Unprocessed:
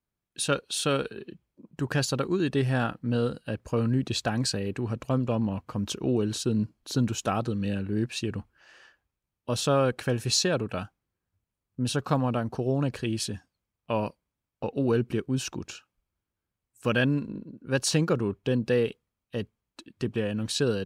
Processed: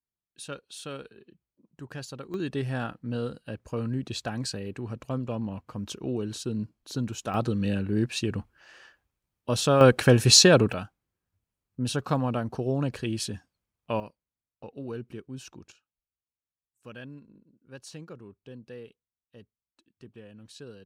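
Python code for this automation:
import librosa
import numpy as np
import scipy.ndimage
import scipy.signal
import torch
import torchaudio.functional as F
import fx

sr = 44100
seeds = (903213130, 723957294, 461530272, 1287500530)

y = fx.gain(x, sr, db=fx.steps((0.0, -12.5), (2.34, -5.0), (7.34, 2.0), (9.81, 9.0), (10.73, -1.0), (14.0, -12.0), (15.72, -19.0)))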